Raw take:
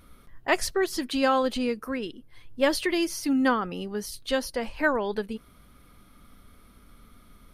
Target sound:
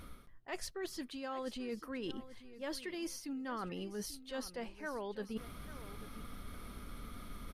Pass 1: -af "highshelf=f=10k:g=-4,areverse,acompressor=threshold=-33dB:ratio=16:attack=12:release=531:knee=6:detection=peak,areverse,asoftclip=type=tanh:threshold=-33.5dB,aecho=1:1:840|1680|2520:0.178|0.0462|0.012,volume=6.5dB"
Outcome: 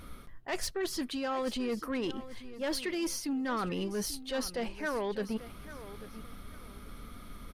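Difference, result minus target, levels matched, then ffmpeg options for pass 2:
compressor: peak gain reduction -10.5 dB
-af "highshelf=f=10k:g=-4,areverse,acompressor=threshold=-44dB:ratio=16:attack=12:release=531:knee=6:detection=peak,areverse,asoftclip=type=tanh:threshold=-33.5dB,aecho=1:1:840|1680|2520:0.178|0.0462|0.012,volume=6.5dB"

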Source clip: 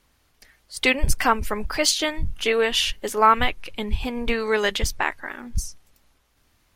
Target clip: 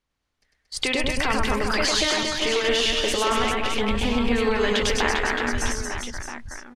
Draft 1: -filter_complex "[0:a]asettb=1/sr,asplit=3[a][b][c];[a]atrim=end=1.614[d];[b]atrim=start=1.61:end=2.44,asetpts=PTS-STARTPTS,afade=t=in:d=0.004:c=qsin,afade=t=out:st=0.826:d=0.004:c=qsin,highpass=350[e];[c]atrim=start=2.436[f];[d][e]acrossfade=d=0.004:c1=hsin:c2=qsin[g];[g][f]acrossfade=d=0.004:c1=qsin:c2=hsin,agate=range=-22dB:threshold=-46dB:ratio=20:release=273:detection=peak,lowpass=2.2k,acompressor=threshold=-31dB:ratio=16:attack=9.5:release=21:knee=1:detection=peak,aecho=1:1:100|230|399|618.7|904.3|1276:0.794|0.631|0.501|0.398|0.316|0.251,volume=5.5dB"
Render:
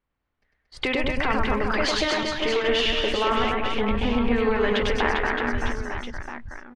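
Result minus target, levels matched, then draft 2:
8000 Hz band -11.0 dB
-filter_complex "[0:a]asettb=1/sr,asplit=3[a][b][c];[a]atrim=end=1.614[d];[b]atrim=start=1.61:end=2.44,asetpts=PTS-STARTPTS,afade=t=in:d=0.004:c=qsin,afade=t=out:st=0.826:d=0.004:c=qsin,highpass=350[e];[c]atrim=start=2.436[f];[d][e]acrossfade=d=0.004:c1=hsin:c2=qsin[g];[g][f]acrossfade=d=0.004:c1=qsin:c2=hsin,agate=range=-22dB:threshold=-46dB:ratio=20:release=273:detection=peak,lowpass=7.5k,acompressor=threshold=-31dB:ratio=16:attack=9.5:release=21:knee=1:detection=peak,aecho=1:1:100|230|399|618.7|904.3|1276:0.794|0.631|0.501|0.398|0.316|0.251,volume=5.5dB"

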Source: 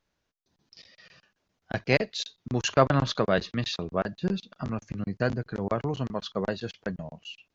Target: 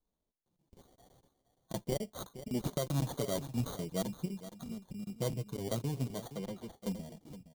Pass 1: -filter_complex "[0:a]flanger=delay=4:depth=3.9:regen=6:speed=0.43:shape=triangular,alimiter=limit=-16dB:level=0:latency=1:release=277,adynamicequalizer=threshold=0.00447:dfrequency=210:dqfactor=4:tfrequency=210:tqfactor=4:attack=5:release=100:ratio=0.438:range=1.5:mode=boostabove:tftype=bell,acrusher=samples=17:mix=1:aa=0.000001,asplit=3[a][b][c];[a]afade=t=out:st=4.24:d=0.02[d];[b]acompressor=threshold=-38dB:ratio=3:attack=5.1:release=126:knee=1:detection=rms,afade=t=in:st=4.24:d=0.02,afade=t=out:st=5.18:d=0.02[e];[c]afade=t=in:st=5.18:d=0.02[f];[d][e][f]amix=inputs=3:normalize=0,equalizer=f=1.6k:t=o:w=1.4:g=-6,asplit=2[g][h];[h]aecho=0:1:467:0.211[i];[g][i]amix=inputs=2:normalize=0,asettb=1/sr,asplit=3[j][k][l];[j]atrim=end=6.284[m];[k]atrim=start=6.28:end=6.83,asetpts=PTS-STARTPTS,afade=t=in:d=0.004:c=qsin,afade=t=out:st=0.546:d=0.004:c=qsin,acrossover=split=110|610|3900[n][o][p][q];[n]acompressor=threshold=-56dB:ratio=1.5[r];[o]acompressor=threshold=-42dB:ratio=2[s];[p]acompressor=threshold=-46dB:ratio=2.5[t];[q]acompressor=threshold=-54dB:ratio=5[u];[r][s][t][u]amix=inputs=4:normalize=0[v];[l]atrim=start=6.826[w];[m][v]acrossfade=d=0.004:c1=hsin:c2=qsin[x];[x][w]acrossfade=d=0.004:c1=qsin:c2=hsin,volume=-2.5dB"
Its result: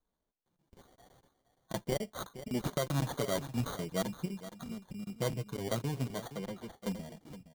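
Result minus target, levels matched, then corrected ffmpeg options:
2000 Hz band +6.5 dB
-filter_complex "[0:a]flanger=delay=4:depth=3.9:regen=6:speed=0.43:shape=triangular,alimiter=limit=-16dB:level=0:latency=1:release=277,adynamicequalizer=threshold=0.00447:dfrequency=210:dqfactor=4:tfrequency=210:tqfactor=4:attack=5:release=100:ratio=0.438:range=1.5:mode=boostabove:tftype=bell,acrusher=samples=17:mix=1:aa=0.000001,asplit=3[a][b][c];[a]afade=t=out:st=4.24:d=0.02[d];[b]acompressor=threshold=-38dB:ratio=3:attack=5.1:release=126:knee=1:detection=rms,afade=t=in:st=4.24:d=0.02,afade=t=out:st=5.18:d=0.02[e];[c]afade=t=in:st=5.18:d=0.02[f];[d][e][f]amix=inputs=3:normalize=0,equalizer=f=1.6k:t=o:w=1.4:g=-15.5,asplit=2[g][h];[h]aecho=0:1:467:0.211[i];[g][i]amix=inputs=2:normalize=0,asettb=1/sr,asplit=3[j][k][l];[j]atrim=end=6.284[m];[k]atrim=start=6.28:end=6.83,asetpts=PTS-STARTPTS,afade=t=in:d=0.004:c=qsin,afade=t=out:st=0.546:d=0.004:c=qsin,acrossover=split=110|610|3900[n][o][p][q];[n]acompressor=threshold=-56dB:ratio=1.5[r];[o]acompressor=threshold=-42dB:ratio=2[s];[p]acompressor=threshold=-46dB:ratio=2.5[t];[q]acompressor=threshold=-54dB:ratio=5[u];[r][s][t][u]amix=inputs=4:normalize=0[v];[l]atrim=start=6.826[w];[m][v]acrossfade=d=0.004:c1=hsin:c2=qsin[x];[x][w]acrossfade=d=0.004:c1=qsin:c2=hsin,volume=-2.5dB"

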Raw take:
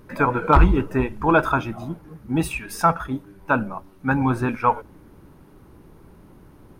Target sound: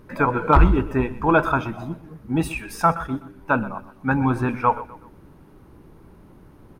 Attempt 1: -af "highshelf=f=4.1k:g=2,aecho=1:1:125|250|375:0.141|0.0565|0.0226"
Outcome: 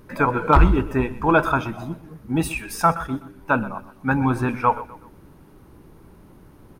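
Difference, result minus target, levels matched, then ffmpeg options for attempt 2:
8000 Hz band +4.5 dB
-af "highshelf=f=4.1k:g=-4,aecho=1:1:125|250|375:0.141|0.0565|0.0226"

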